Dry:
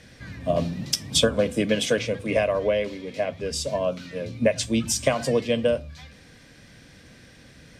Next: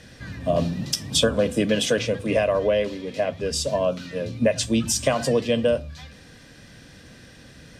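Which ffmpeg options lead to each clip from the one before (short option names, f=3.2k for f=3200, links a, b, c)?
-filter_complex "[0:a]bandreject=f=2.2k:w=9.3,asplit=2[a][b];[b]alimiter=limit=-16.5dB:level=0:latency=1:release=37,volume=1dB[c];[a][c]amix=inputs=2:normalize=0,volume=-3.5dB"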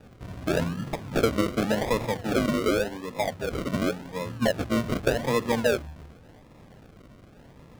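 -af "acrusher=samples=41:mix=1:aa=0.000001:lfo=1:lforange=24.6:lforate=0.88,highshelf=f=5k:g=-7,volume=-3.5dB"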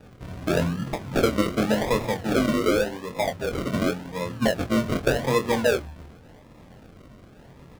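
-filter_complex "[0:a]asplit=2[a][b];[b]adelay=23,volume=-7dB[c];[a][c]amix=inputs=2:normalize=0,volume=1.5dB"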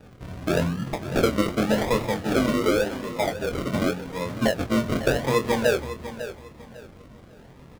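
-af "aecho=1:1:550|1100|1650:0.237|0.064|0.0173"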